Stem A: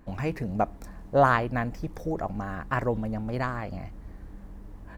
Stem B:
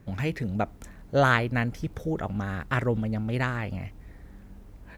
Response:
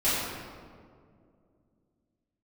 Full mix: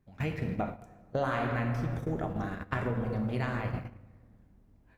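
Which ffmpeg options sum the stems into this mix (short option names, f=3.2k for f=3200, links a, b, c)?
-filter_complex "[0:a]volume=-10dB,asplit=3[a][b][c];[b]volume=-16.5dB[d];[1:a]equalizer=f=340:t=o:w=0.29:g=-3,volume=-1.5dB,asplit=2[e][f];[f]volume=-17dB[g];[c]apad=whole_len=219306[h];[e][h]sidechaincompress=threshold=-38dB:ratio=8:attack=16:release=121[i];[2:a]atrim=start_sample=2205[j];[d][g]amix=inputs=2:normalize=0[k];[k][j]afir=irnorm=-1:irlink=0[l];[a][i][l]amix=inputs=3:normalize=0,agate=range=-19dB:threshold=-28dB:ratio=16:detection=peak,acompressor=threshold=-30dB:ratio=3"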